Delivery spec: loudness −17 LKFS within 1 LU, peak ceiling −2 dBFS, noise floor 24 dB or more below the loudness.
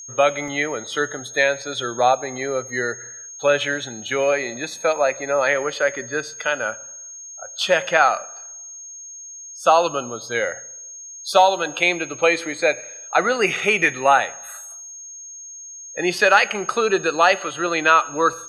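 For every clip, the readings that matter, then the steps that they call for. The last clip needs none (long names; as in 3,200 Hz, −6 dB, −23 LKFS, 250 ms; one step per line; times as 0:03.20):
number of dropouts 2; longest dropout 1.4 ms; interfering tone 6,500 Hz; level of the tone −35 dBFS; integrated loudness −20.0 LKFS; sample peak −2.0 dBFS; target loudness −17.0 LKFS
→ repair the gap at 0:00.48/0:18.33, 1.4 ms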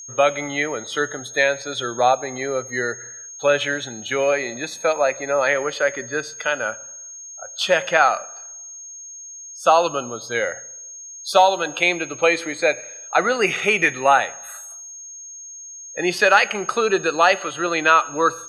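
number of dropouts 0; interfering tone 6,500 Hz; level of the tone −35 dBFS
→ notch filter 6,500 Hz, Q 30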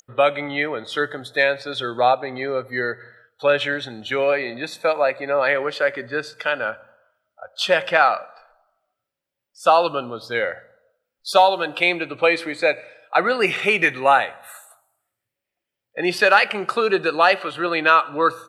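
interfering tone none found; integrated loudness −20.0 LKFS; sample peak −2.5 dBFS; target loudness −17.0 LKFS
→ level +3 dB
brickwall limiter −2 dBFS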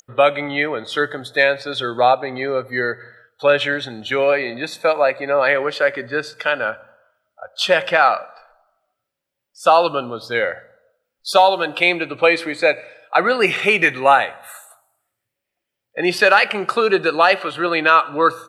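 integrated loudness −17.5 LKFS; sample peak −2.0 dBFS; background noise floor −80 dBFS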